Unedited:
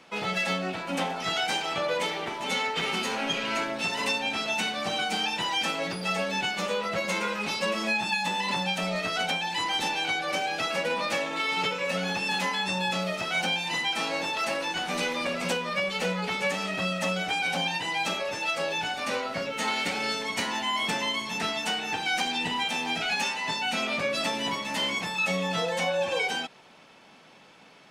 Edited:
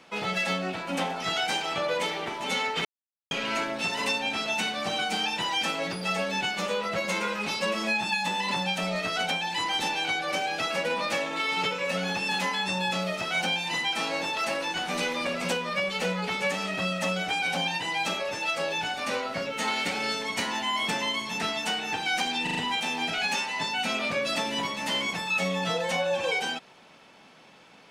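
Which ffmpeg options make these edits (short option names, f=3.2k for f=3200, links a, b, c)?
-filter_complex "[0:a]asplit=6[a][b][c][d][e][f];[a]atrim=end=2.85,asetpts=PTS-STARTPTS,afade=t=out:st=2.846:d=0.004:c=hsin[g];[b]atrim=start=2.85:end=3.31,asetpts=PTS-STARTPTS,volume=0[h];[c]atrim=start=3.31:end=22.472,asetpts=PTS-STARTPTS,afade=t=in:d=0.004:c=hsin[i];[d]atrim=start=22.428:end=22.472[j];[e]atrim=start=22.428:end=22.472[k];[f]atrim=start=22.428[l];[g][h][i]concat=n=3:v=0:a=1[m];[m][j]acrossfade=d=0.004:c1=hsin:c2=hsin[n];[n][k]acrossfade=d=0.004:c1=hsin:c2=hsin[o];[o][l]acrossfade=d=0.004:c1=hsin:c2=hsin"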